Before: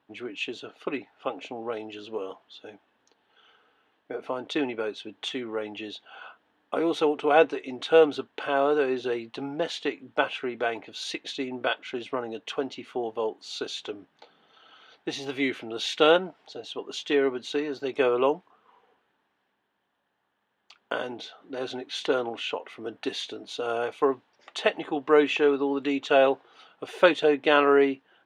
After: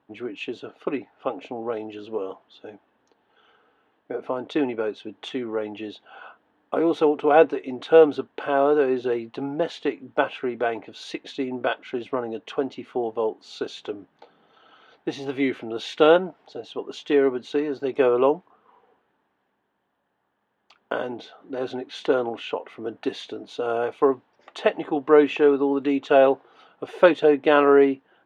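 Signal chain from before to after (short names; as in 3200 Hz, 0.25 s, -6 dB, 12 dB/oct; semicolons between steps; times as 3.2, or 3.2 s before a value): high shelf 2000 Hz -12 dB; gain +5 dB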